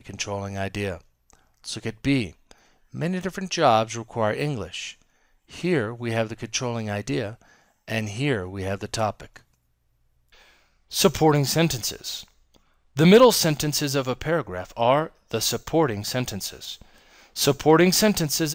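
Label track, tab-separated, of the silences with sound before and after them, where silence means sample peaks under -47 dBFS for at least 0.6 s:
9.410000	10.320000	silence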